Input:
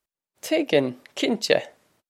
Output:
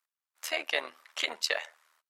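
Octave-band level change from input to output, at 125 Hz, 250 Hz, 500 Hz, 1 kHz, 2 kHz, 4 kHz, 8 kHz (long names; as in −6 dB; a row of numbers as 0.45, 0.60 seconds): below −35 dB, −27.5 dB, −16.0 dB, −5.5 dB, −2.5 dB, −3.5 dB, −3.5 dB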